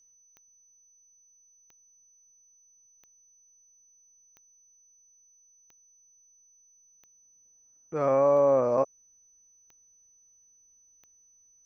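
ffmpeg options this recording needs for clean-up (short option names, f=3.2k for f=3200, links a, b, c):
-af "adeclick=t=4,bandreject=f=6k:w=30"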